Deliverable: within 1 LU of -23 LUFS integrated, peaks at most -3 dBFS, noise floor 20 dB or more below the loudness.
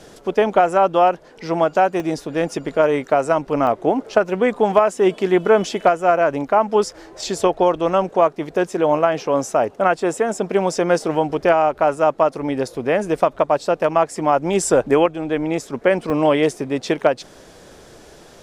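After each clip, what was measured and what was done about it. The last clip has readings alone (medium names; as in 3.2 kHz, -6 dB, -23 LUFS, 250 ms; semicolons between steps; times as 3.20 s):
dropouts 3; longest dropout 1.1 ms; loudness -18.5 LUFS; peak level -2.0 dBFS; loudness target -23.0 LUFS
-> interpolate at 2.00/3.67/16.10 s, 1.1 ms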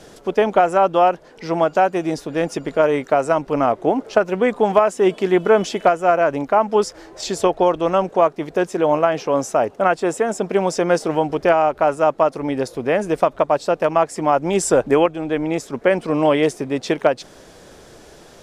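dropouts 0; loudness -18.5 LUFS; peak level -2.0 dBFS; loudness target -23.0 LUFS
-> trim -4.5 dB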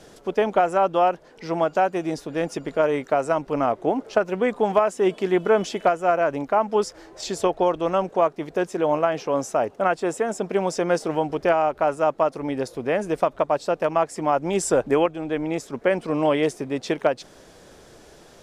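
loudness -23.0 LUFS; peak level -6.5 dBFS; noise floor -50 dBFS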